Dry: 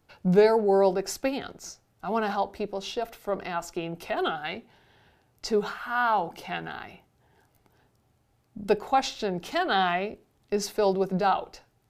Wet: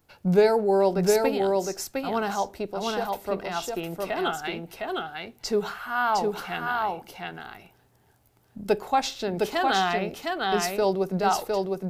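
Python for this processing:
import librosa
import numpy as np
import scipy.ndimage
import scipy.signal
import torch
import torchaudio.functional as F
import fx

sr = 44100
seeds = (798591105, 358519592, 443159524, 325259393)

y = fx.high_shelf(x, sr, hz=10000.0, db=10.5)
y = y + 10.0 ** (-3.0 / 20.0) * np.pad(y, (int(709 * sr / 1000.0), 0))[:len(y)]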